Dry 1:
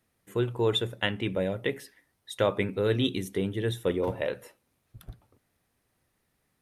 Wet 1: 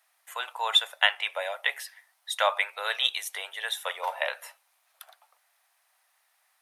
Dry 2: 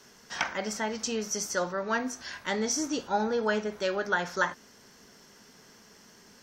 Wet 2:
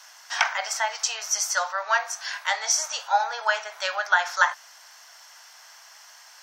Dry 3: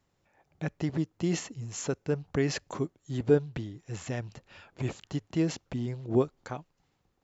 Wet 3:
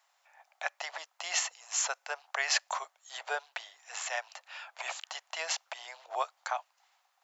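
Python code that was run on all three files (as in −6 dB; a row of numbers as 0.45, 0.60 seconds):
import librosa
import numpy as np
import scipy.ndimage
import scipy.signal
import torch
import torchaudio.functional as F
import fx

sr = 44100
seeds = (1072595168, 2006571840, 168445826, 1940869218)

y = scipy.signal.sosfilt(scipy.signal.butter(8, 670.0, 'highpass', fs=sr, output='sos'), x)
y = F.gain(torch.from_numpy(y), 8.0).numpy()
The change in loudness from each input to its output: +1.5, +5.5, −3.0 LU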